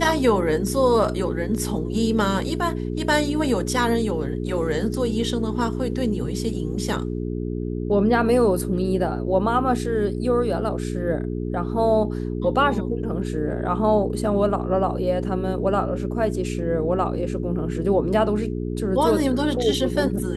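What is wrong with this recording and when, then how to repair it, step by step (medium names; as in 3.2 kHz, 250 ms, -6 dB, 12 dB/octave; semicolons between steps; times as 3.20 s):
hum 60 Hz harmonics 7 -27 dBFS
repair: de-hum 60 Hz, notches 7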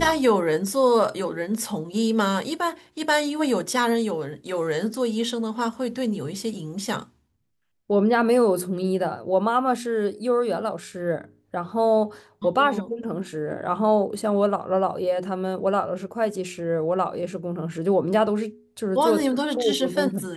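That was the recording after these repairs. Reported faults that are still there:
nothing left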